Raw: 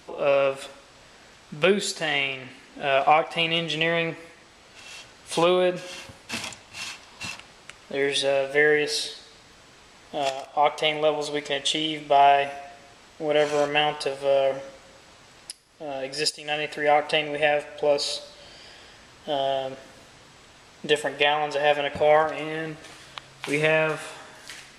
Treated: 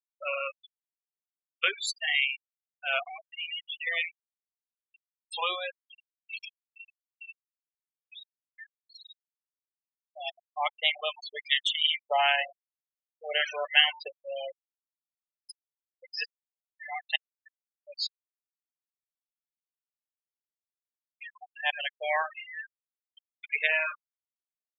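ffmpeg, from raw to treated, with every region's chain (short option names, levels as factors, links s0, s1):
-filter_complex "[0:a]asettb=1/sr,asplit=3[s0][s1][s2];[s0]atrim=end=3.074[s3];[s1]atrim=start=3.07:end=3.87,asetpts=PTS-STARTPTS,afade=t=in:d=0.004:c=qsin,afade=t=out:st=0.796:d=0.004:c=qsin,equalizer=f=65:w=1.2:g=11.5,acompressor=threshold=0.0501:ratio=1.5:attack=3.2:release=140:knee=1:detection=peak,asoftclip=type=hard:threshold=0.0376[s4];[s2]atrim=start=3.866[s5];[s3][s4]acrossfade=d=0.004:c1=hsin:c2=qsin[s6];[s6][s5]acrossfade=d=0.004:c1=qsin:c2=hsin,asettb=1/sr,asplit=3[s7][s8][s9];[s7]atrim=end=6.674[s10];[s8]atrim=start=6.67:end=9.1,asetpts=PTS-STARTPTS,afade=t=in:d=0.004:c=qsin,afade=t=out:st=2.426:d=0.004:c=qsin,acompressor=threshold=0.0631:ratio=16:attack=3.2:release=140:knee=1:detection=peak,volume=59.6,asoftclip=hard,volume=0.0168[s11];[s9]atrim=start=9.096[s12];[s10][s11]acrossfade=d=0.004:c1=hsin:c2=qsin[s13];[s13][s12]acrossfade=d=0.004:c1=qsin:c2=hsin,asettb=1/sr,asplit=3[s14][s15][s16];[s14]atrim=end=10.954[s17];[s15]atrim=start=10.95:end=14.16,asetpts=PTS-STARTPTS,afade=t=in:d=0.004:c=qsin,afade=t=out:st=3.206:d=0.004:c=qsin,acrossover=split=1200[s18][s19];[s18]aeval=exprs='val(0)*(1-0.7/2+0.7/2*cos(2*PI*2.6*n/s))':c=same[s20];[s19]aeval=exprs='val(0)*(1-0.7/2-0.7/2*cos(2*PI*2.6*n/s))':c=same[s21];[s20][s21]amix=inputs=2:normalize=0,acontrast=51[s22];[s16]atrim=start=14.156[s23];[s17][s22]acrossfade=d=0.004:c1=hsin:c2=qsin[s24];[s24][s23]acrossfade=d=0.004:c1=qsin:c2=hsin,asettb=1/sr,asplit=3[s25][s26][s27];[s25]atrim=end=16.254[s28];[s26]atrim=start=16.25:end=21.73,asetpts=PTS-STARTPTS,afade=t=in:d=0.004:c=qsin,afade=t=out:st=5.476:d=0.004:c=qsin,lowshelf=f=570:t=q:w=1.5:g=-11,aeval=exprs='val(0)*pow(10,-29*if(lt(mod(-1.1*n/s,1),2*abs(-1.1)/1000),1-mod(-1.1*n/s,1)/(2*abs(-1.1)/1000),(mod(-1.1*n/s,1)-2*abs(-1.1)/1000)/(1-2*abs(-1.1)/1000))/20)':c=same[s29];[s27]atrim=start=21.726[s30];[s28][s29]acrossfade=d=0.004:c1=hsin:c2=qsin[s31];[s31][s30]acrossfade=d=0.004:c1=qsin:c2=hsin,highpass=1300,afftfilt=real='re*gte(hypot(re,im),0.0708)':imag='im*gte(hypot(re,im),0.0708)':win_size=1024:overlap=0.75"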